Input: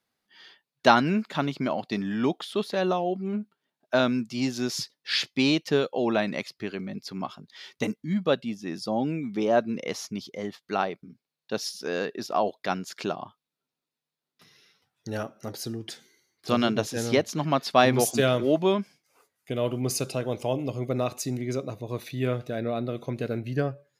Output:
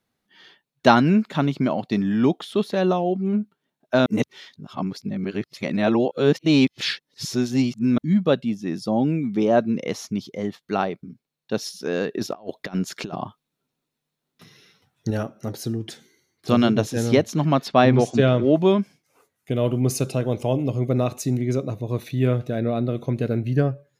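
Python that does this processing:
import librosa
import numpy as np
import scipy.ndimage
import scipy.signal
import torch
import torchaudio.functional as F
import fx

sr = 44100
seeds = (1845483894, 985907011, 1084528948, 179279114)

y = fx.over_compress(x, sr, threshold_db=-33.0, ratio=-0.5, at=(12.14, 15.11))
y = fx.air_absorb(y, sr, metres=120.0, at=(17.68, 18.56))
y = fx.edit(y, sr, fx.reverse_span(start_s=4.06, length_s=3.92), tone=tone)
y = fx.low_shelf(y, sr, hz=370.0, db=9.0)
y = fx.notch(y, sr, hz=4800.0, q=13.0)
y = F.gain(torch.from_numpy(y), 1.0).numpy()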